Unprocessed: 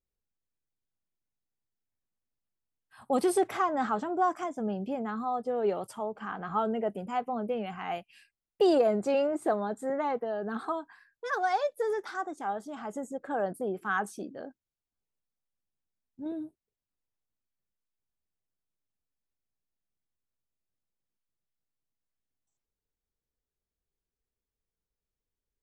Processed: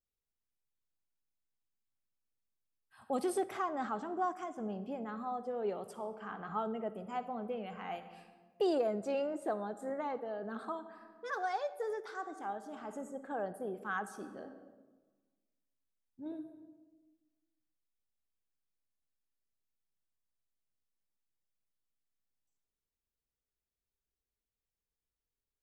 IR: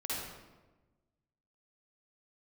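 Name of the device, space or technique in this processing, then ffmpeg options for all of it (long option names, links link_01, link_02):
compressed reverb return: -filter_complex "[0:a]asplit=2[link_01][link_02];[1:a]atrim=start_sample=2205[link_03];[link_02][link_03]afir=irnorm=-1:irlink=0,acompressor=threshold=-32dB:ratio=6,volume=-7dB[link_04];[link_01][link_04]amix=inputs=2:normalize=0,volume=-8.5dB"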